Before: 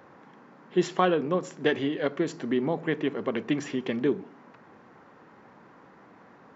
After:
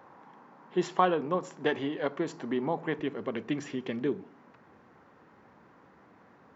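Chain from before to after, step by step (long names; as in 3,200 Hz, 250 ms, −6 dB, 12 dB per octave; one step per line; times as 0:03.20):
parametric band 910 Hz +8 dB 0.82 octaves, from 0:02.99 75 Hz
level −5 dB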